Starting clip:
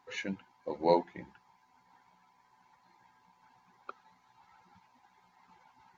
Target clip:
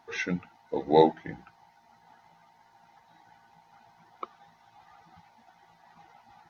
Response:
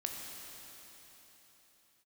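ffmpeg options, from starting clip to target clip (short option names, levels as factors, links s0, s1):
-af "asetrate=40572,aresample=44100,volume=2.11"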